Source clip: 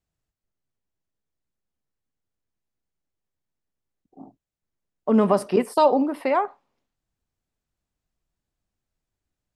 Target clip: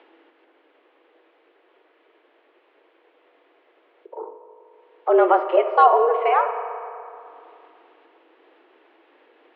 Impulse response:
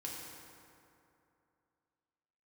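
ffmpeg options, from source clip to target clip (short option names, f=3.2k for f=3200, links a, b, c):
-filter_complex "[0:a]acompressor=mode=upward:threshold=-27dB:ratio=2.5,asplit=2[a][b];[1:a]atrim=start_sample=2205,lowpass=3.4k[c];[b][c]afir=irnorm=-1:irlink=0,volume=-3dB[d];[a][d]amix=inputs=2:normalize=0,highpass=f=160:t=q:w=0.5412,highpass=f=160:t=q:w=1.307,lowpass=f=3.1k:t=q:w=0.5176,lowpass=f=3.1k:t=q:w=0.7071,lowpass=f=3.1k:t=q:w=1.932,afreqshift=170"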